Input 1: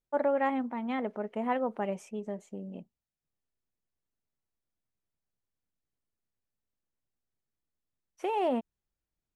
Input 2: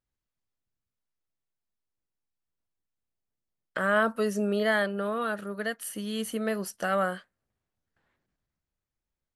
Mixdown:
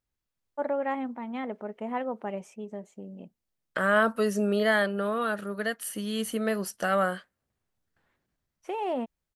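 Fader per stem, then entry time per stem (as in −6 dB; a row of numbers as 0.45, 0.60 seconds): −1.5, +1.5 decibels; 0.45, 0.00 seconds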